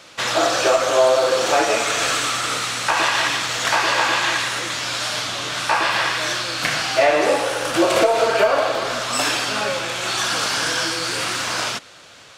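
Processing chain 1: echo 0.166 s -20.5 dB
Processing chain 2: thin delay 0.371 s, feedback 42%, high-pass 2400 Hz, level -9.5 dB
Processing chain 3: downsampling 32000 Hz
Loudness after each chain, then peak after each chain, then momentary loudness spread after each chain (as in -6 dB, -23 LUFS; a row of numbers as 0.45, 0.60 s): -19.0, -19.0, -19.0 LUFS; -5.0, -5.0, -5.5 dBFS; 6, 6, 6 LU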